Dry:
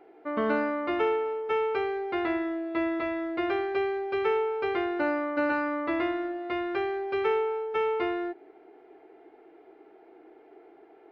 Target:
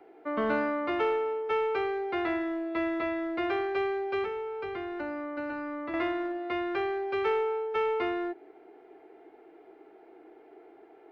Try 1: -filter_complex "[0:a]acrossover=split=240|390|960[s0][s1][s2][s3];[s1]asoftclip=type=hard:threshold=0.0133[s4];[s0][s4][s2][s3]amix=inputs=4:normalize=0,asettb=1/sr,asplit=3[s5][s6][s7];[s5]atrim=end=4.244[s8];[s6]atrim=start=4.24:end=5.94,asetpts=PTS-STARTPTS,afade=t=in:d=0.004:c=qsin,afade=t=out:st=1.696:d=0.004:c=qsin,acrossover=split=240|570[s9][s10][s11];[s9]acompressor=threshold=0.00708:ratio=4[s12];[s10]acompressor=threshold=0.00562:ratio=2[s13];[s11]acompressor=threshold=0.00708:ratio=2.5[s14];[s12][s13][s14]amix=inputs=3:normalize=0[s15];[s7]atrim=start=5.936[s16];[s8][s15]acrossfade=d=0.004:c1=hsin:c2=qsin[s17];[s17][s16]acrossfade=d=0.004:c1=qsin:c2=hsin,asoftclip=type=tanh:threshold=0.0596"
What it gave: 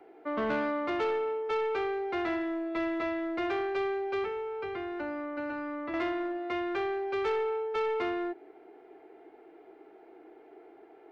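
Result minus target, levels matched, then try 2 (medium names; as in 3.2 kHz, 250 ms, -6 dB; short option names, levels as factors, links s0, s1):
saturation: distortion +13 dB
-filter_complex "[0:a]acrossover=split=240|390|960[s0][s1][s2][s3];[s1]asoftclip=type=hard:threshold=0.0133[s4];[s0][s4][s2][s3]amix=inputs=4:normalize=0,asettb=1/sr,asplit=3[s5][s6][s7];[s5]atrim=end=4.244[s8];[s6]atrim=start=4.24:end=5.94,asetpts=PTS-STARTPTS,afade=t=in:d=0.004:c=qsin,afade=t=out:st=1.696:d=0.004:c=qsin,acrossover=split=240|570[s9][s10][s11];[s9]acompressor=threshold=0.00708:ratio=4[s12];[s10]acompressor=threshold=0.00562:ratio=2[s13];[s11]acompressor=threshold=0.00708:ratio=2.5[s14];[s12][s13][s14]amix=inputs=3:normalize=0[s15];[s7]atrim=start=5.936[s16];[s8][s15]acrossfade=d=0.004:c1=hsin:c2=qsin[s17];[s17][s16]acrossfade=d=0.004:c1=qsin:c2=hsin,asoftclip=type=tanh:threshold=0.158"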